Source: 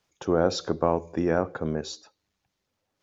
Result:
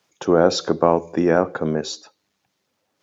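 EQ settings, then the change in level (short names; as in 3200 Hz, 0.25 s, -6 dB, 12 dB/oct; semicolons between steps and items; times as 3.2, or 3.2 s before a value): HPF 150 Hz 12 dB/oct; +7.5 dB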